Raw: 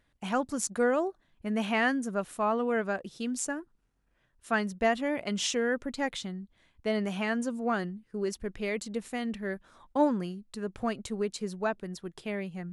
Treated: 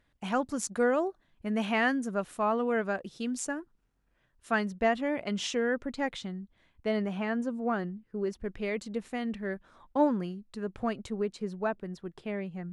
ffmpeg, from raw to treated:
ffmpeg -i in.wav -af "asetnsamples=nb_out_samples=441:pad=0,asendcmd='4.65 lowpass f 3400;7.02 lowpass f 1500;8.44 lowpass f 3200;11.1 lowpass f 1900',lowpass=frequency=7000:poles=1" out.wav

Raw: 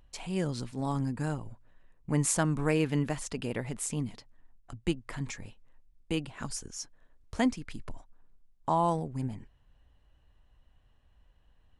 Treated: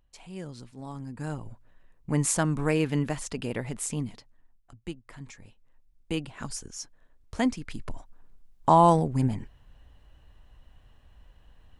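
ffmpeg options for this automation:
ffmpeg -i in.wav -af "volume=18.5dB,afade=type=in:start_time=1.05:duration=0.45:silence=0.316228,afade=type=out:start_time=3.94:duration=0.79:silence=0.334965,afade=type=in:start_time=5.36:duration=0.76:silence=0.375837,afade=type=in:start_time=7.4:duration=1.29:silence=0.398107" out.wav

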